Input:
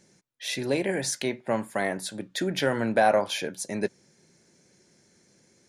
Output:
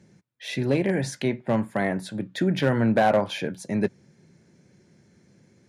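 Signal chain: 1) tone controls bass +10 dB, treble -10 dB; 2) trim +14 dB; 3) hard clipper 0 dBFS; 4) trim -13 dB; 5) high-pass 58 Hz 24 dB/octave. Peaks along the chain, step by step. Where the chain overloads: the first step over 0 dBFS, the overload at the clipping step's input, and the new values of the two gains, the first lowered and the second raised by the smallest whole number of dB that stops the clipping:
-9.0 dBFS, +5.0 dBFS, 0.0 dBFS, -13.0 dBFS, -9.5 dBFS; step 2, 5.0 dB; step 2 +9 dB, step 4 -8 dB

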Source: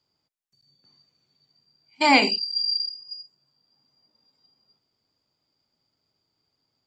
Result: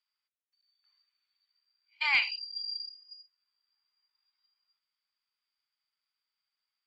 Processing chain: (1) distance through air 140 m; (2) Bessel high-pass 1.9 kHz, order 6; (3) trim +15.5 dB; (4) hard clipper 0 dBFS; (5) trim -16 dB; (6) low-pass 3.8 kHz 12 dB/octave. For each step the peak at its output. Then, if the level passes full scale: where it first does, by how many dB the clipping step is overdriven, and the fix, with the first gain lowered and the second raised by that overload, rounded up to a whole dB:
-5.5 dBFS, -12.0 dBFS, +3.5 dBFS, 0.0 dBFS, -16.0 dBFS, -16.0 dBFS; step 3, 3.5 dB; step 3 +11.5 dB, step 5 -12 dB

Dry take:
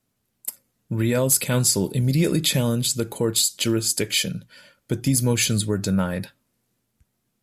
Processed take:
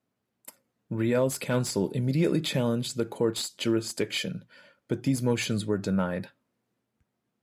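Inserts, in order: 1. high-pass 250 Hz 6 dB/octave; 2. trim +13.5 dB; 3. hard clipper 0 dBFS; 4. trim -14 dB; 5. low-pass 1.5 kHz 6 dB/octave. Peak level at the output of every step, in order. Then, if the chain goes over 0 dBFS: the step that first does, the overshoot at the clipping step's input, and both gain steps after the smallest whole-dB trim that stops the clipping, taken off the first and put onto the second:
-6.0 dBFS, +7.5 dBFS, 0.0 dBFS, -14.0 dBFS, -14.0 dBFS; step 2, 7.5 dB; step 2 +5.5 dB, step 4 -6 dB

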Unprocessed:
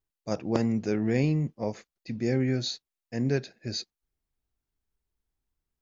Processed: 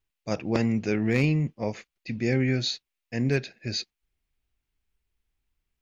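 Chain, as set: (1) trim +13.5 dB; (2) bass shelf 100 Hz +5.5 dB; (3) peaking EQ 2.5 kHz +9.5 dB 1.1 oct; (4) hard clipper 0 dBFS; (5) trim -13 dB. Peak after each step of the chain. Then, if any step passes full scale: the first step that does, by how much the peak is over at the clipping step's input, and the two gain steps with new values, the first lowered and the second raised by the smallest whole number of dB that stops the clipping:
+4.0 dBFS, +4.5 dBFS, +6.0 dBFS, 0.0 dBFS, -13.0 dBFS; step 1, 6.0 dB; step 1 +7.5 dB, step 5 -7 dB

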